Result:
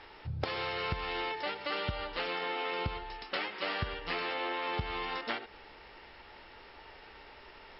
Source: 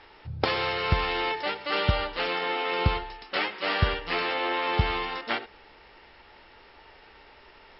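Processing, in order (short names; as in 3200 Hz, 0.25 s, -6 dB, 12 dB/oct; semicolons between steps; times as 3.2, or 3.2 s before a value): compressor 6:1, threshold -32 dBFS, peak gain reduction 14.5 dB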